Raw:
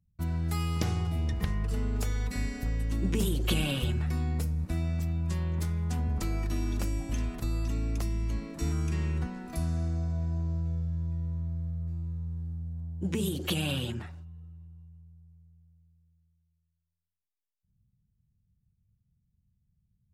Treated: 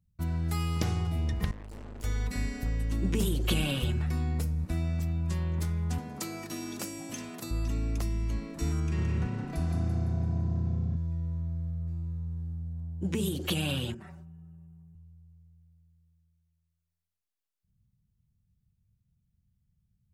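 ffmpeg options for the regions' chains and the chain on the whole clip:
-filter_complex "[0:a]asettb=1/sr,asplit=3[a][b][c];[a]atrim=end=1.514[d];[b]atrim=start=1.51:end=2.04,asetpts=PTS-STARTPTS,afade=t=in:d=0.004:c=qsin,afade=t=out:st=0.526:d=0.004:c=qsin,equalizer=f=240:t=o:w=2.4:g=4,aeval=exprs='(tanh(126*val(0)+0.55)-tanh(0.55))/126':c=same[e];[c]atrim=start=2.036[f];[d][e]acrossfade=d=0.004:c1=hsin:c2=qsin[g];[g][f]acrossfade=d=0.004:c1=qsin:c2=hsin,asettb=1/sr,asplit=3[h][i][j];[h]atrim=end=5.984[k];[i]atrim=start=5.98:end=7.51,asetpts=PTS-STARTPTS,afade=t=in:d=0.004:c=qsin,afade=t=out:st=1.526:d=0.004:c=qsin,highpass=f=130:w=0.5412,highpass=f=130:w=1.3066,bass=f=250:g=-5,treble=f=4k:g=6[l];[j]atrim=start=7.506[m];[k][l]acrossfade=d=0.004:c1=hsin:c2=qsin[n];[n][m]acrossfade=d=0.004:c1=qsin:c2=hsin,asettb=1/sr,asplit=3[o][p][q];[o]atrim=end=8.804[r];[p]atrim=start=8.8:end=10.96,asetpts=PTS-STARTPTS,afade=t=in:d=0.004:c=qsin,afade=t=out:st=2.156:d=0.004:c=qsin,highshelf=f=7.8k:g=-11.5,asplit=7[s][t][u][v][w][x][y];[t]adelay=169,afreqshift=32,volume=-6dB[z];[u]adelay=338,afreqshift=64,volume=-12.2dB[aa];[v]adelay=507,afreqshift=96,volume=-18.4dB[ab];[w]adelay=676,afreqshift=128,volume=-24.6dB[ac];[x]adelay=845,afreqshift=160,volume=-30.8dB[ad];[y]adelay=1014,afreqshift=192,volume=-37dB[ae];[s][z][aa][ab][ac][ad][ae]amix=inputs=7:normalize=0,atrim=end_sample=95256[af];[q]atrim=start=10.956[ag];[r][af]acrossfade=d=0.004:c1=hsin:c2=qsin[ah];[ah][ag]acrossfade=d=0.004:c1=qsin:c2=hsin,asettb=1/sr,asplit=3[ai][aj][ak];[ai]atrim=end=13.944[al];[aj]atrim=start=13.94:end=14.95,asetpts=PTS-STARTPTS,afade=t=in:d=0.004:c=qsin,afade=t=out:st=1.006:d=0.004:c=qsin,equalizer=f=3.8k:w=1.2:g=-10,aecho=1:1:5.2:0.9,atrim=end_sample=44541,acompressor=threshold=-41dB:ratio=12:attack=3.2:release=140:knee=1:detection=peak[am];[ak]atrim=start=14.946[an];[al][am]acrossfade=d=0.004:c1=hsin:c2=qsin[ao];[ao][an]acrossfade=d=0.004:c1=qsin:c2=hsin"

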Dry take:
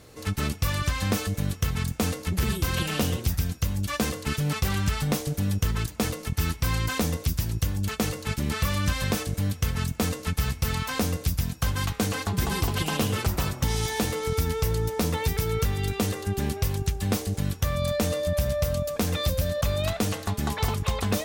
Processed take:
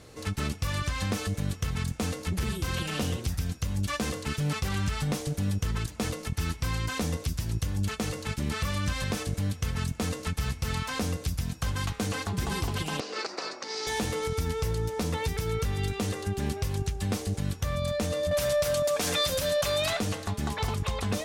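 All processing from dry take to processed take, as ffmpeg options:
-filter_complex "[0:a]asettb=1/sr,asplit=3[a][b][c];[a]atrim=end=13.004[d];[b]atrim=start=13:end=13.87,asetpts=PTS-STARTPTS,afade=t=in:d=0.004:c=qsin,afade=t=out:st=0.866:d=0.004:c=qsin,acompressor=threshold=-24dB:ratio=4:attack=3.2:release=140:knee=1:detection=peak,highpass=f=340:w=0.5412,highpass=f=340:w=1.3066,equalizer=f=910:t=q:w=4:g=-3,equalizer=f=3.2k:t=q:w=4:g=-9,equalizer=f=4.6k:t=q:w=4:g=9,lowpass=f=6.2k:w=0.5412,lowpass=f=6.2k:w=1.3066[e];[c]atrim=start=13.866[f];[d][e]acrossfade=d=0.004:c1=hsin:c2=qsin[g];[g][f]acrossfade=d=0.004:c1=qsin:c2=hsin,asettb=1/sr,asplit=3[h][i][j];[h]atrim=end=18.314[k];[i]atrim=start=18.31:end=20,asetpts=PTS-STARTPTS,afade=t=in:d=0.004:c=qsin,afade=t=out:st=1.686:d=0.004:c=qsin,highshelf=f=7k:g=11,aecho=1:1:7:0.32,atrim=end_sample=74529,asplit=2[l][m];[m]highpass=f=720:p=1,volume=18dB,asoftclip=type=tanh:threshold=-9.5dB[n];[l][n]amix=inputs=2:normalize=0,lowpass=f=5.9k:p=1,volume=-6dB[o];[j]atrim=start=19.996[p];[k][o]acrossfade=d=0.004:c1=hsin:c2=qsin[q];[q][p]acrossfade=d=0.004:c1=qsin:c2=hsin,lowpass=11k,alimiter=limit=-20.5dB:level=0:latency=1:release=176"

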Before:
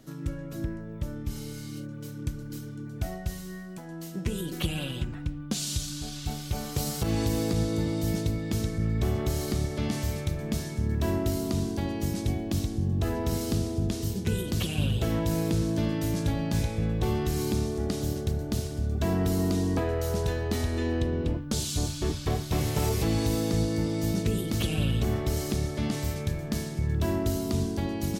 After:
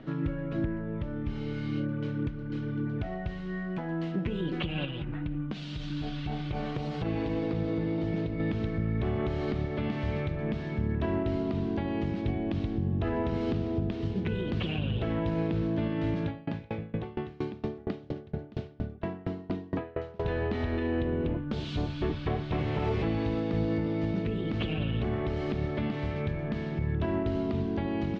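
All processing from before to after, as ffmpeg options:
-filter_complex "[0:a]asettb=1/sr,asplit=3[a][b][c];[a]atrim=end=4.854[d];[b]atrim=start=4.85:end=8.4,asetpts=PTS-STARTPTS,afade=t=in:d=0.004:c=qsin,afade=t=out:st=3.546:d=0.004:c=qsin,flanger=delay=0.1:depth=6.6:regen=-72:speed=1.8:shape=triangular,aecho=1:1:6.4:0.34,atrim=end_sample=156555,acompressor=threshold=-34dB:ratio=3:attack=3.2:release=140:knee=1:detection=peak[e];[c]atrim=start=8.396[f];[d][e]acrossfade=d=0.004:c1=hsin:c2=qsin[g];[g][f]acrossfade=d=0.004:c1=qsin:c2=hsin,asettb=1/sr,asplit=3[h][i][j];[h]atrim=end=16.244[k];[i]atrim=start=16.24:end=20.25,asetpts=PTS-STARTPTS,afade=t=in:d=0.004:c=qsin,afade=t=out:st=4.006:d=0.004:c=qsin,highpass=83,aeval=exprs='val(0)*pow(10,-30*if(lt(mod(4.3*n/s,1),2*abs(4.3)/1000),1-mod(4.3*n/s,1)/(2*abs(4.3)/1000),(mod(4.3*n/s,1)-2*abs(4.3)/1000)/(1-2*abs(4.3)/1000))/20)':c=same[l];[j]atrim=start=20.246[m];[k][l]acrossfade=d=0.004:c1=hsin:c2=qsin[n];[n][m]acrossfade=d=0.004:c1=qsin:c2=hsin,lowpass=f=3k:w=0.5412,lowpass=f=3k:w=1.3066,equalizer=f=64:t=o:w=1.6:g=-5.5,alimiter=level_in=5dB:limit=-24dB:level=0:latency=1:release=454,volume=-5dB,volume=8dB"

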